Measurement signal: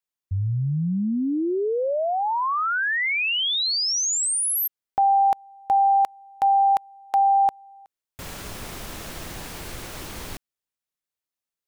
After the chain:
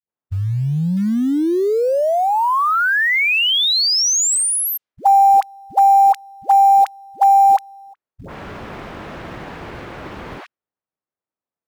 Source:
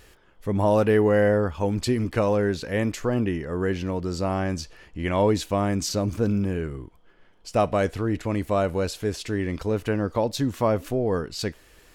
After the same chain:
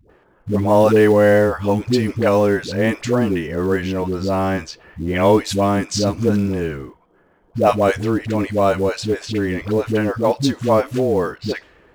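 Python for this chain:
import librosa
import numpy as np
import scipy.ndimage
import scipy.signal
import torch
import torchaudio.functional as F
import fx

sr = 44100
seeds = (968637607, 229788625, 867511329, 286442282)

p1 = fx.highpass(x, sr, hz=120.0, slope=6)
p2 = fx.env_lowpass(p1, sr, base_hz=1100.0, full_db=-20.0)
p3 = fx.dispersion(p2, sr, late='highs', ms=98.0, hz=440.0)
p4 = fx.quant_float(p3, sr, bits=2)
p5 = p3 + F.gain(torch.from_numpy(p4), -8.0).numpy()
y = F.gain(torch.from_numpy(p5), 4.5).numpy()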